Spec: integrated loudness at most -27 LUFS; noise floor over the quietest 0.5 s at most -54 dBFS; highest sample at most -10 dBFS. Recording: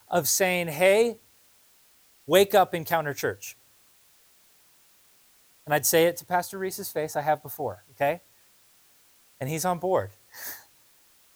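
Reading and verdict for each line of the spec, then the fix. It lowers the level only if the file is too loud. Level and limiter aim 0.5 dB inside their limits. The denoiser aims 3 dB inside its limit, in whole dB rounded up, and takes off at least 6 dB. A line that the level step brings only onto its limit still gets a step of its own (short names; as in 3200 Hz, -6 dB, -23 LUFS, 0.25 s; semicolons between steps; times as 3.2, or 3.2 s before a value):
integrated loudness -25.0 LUFS: fail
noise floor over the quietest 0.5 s -60 dBFS: OK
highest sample -6.5 dBFS: fail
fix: gain -2.5 dB; limiter -10.5 dBFS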